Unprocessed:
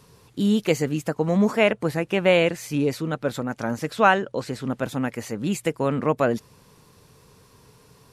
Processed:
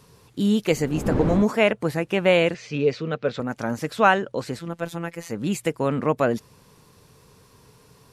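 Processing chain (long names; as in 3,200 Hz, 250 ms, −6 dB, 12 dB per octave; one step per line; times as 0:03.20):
0:00.71–0:01.42: wind on the microphone 330 Hz −26 dBFS
0:02.54–0:03.40: loudspeaker in its box 110–5,300 Hz, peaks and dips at 300 Hz −6 dB, 450 Hz +6 dB, 890 Hz −7 dB, 2,600 Hz +4 dB
0:04.59–0:05.30: phases set to zero 169 Hz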